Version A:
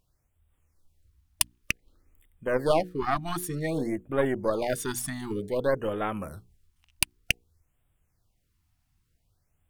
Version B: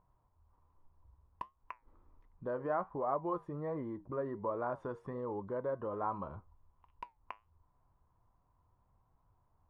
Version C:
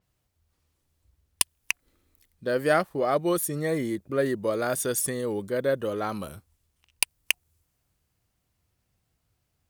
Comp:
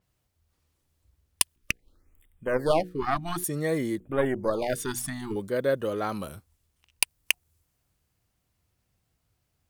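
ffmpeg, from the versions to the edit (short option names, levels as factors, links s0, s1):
-filter_complex "[0:a]asplit=2[s0][s1];[2:a]asplit=3[s2][s3][s4];[s2]atrim=end=1.562[s5];[s0]atrim=start=1.558:end=3.442[s6];[s3]atrim=start=3.438:end=4.002[s7];[s1]atrim=start=3.998:end=5.362[s8];[s4]atrim=start=5.358[s9];[s5][s6]acrossfade=d=0.004:c1=hsin:c2=hsin[s10];[s10][s7]acrossfade=d=0.004:c1=hsin:c2=hsin[s11];[s11][s8]acrossfade=d=0.004:c1=hsin:c2=hsin[s12];[s12][s9]acrossfade=d=0.004:c1=hsin:c2=hsin"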